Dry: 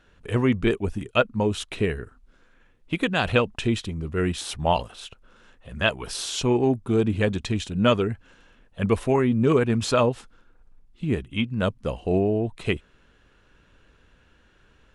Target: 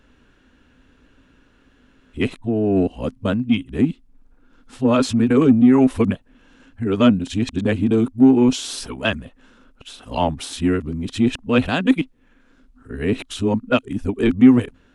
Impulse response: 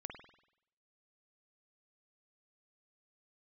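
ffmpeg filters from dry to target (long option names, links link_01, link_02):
-filter_complex "[0:a]areverse,equalizer=frequency=260:width_type=o:width=0.37:gain=14,asplit=2[link_01][link_02];[link_02]asoftclip=type=tanh:threshold=-14.5dB,volume=-10dB[link_03];[link_01][link_03]amix=inputs=2:normalize=0,volume=-1dB"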